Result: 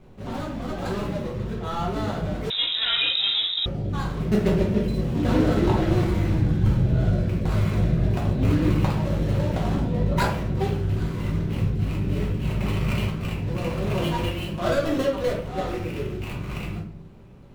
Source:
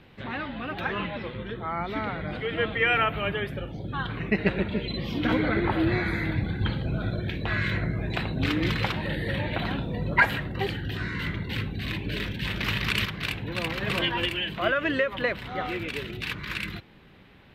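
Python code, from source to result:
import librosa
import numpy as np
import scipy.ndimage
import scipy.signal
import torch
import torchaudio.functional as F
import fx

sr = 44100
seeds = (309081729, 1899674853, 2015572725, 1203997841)

y = scipy.ndimage.median_filter(x, 25, mode='constant')
y = fx.room_shoebox(y, sr, seeds[0], volume_m3=66.0, walls='mixed', distance_m=1.0)
y = fx.freq_invert(y, sr, carrier_hz=3800, at=(2.5, 3.66))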